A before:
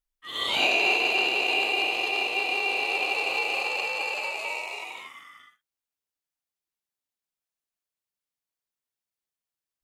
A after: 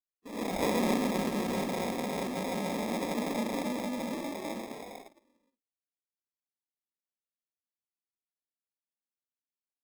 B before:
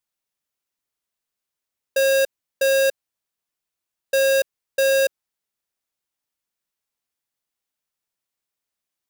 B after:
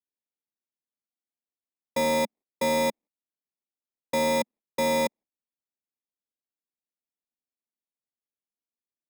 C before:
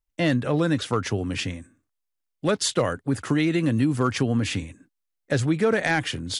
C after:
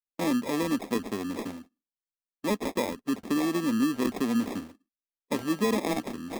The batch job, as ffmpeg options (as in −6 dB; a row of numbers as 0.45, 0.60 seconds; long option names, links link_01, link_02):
-af "acrusher=samples=30:mix=1:aa=0.000001,lowshelf=frequency=170:width_type=q:width=3:gain=-9,agate=range=-18dB:threshold=-40dB:ratio=16:detection=peak,volume=-7dB"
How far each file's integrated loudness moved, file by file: −8.5, −6.5, −5.0 LU